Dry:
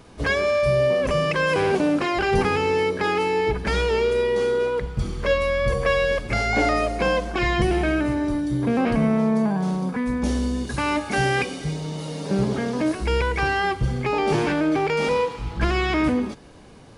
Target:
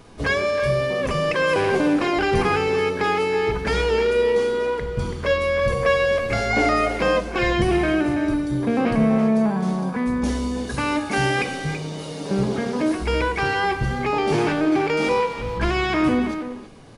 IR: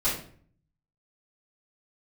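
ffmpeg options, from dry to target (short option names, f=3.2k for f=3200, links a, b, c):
-filter_complex "[0:a]asplit=2[a][b];[b]adelay=330,highpass=300,lowpass=3.4k,asoftclip=type=hard:threshold=-18dB,volume=-8dB[c];[a][c]amix=inputs=2:normalize=0,asplit=2[d][e];[1:a]atrim=start_sample=2205[f];[e][f]afir=irnorm=-1:irlink=0,volume=-21dB[g];[d][g]amix=inputs=2:normalize=0"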